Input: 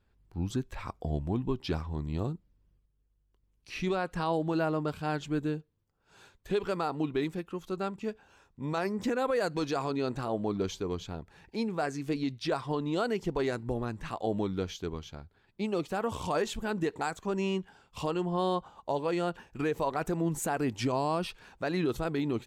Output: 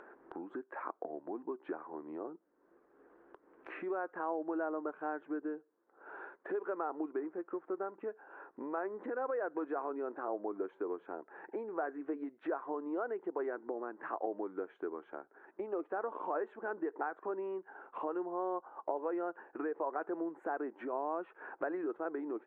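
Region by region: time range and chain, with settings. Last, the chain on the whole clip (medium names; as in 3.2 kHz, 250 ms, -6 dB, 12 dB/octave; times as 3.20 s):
7.19–7.92 s: CVSD coder 32 kbps + distance through air 480 m
whole clip: compression 5:1, threshold -36 dBFS; elliptic band-pass 320–1600 Hz, stop band 50 dB; upward compressor, threshold -42 dBFS; trim +3.5 dB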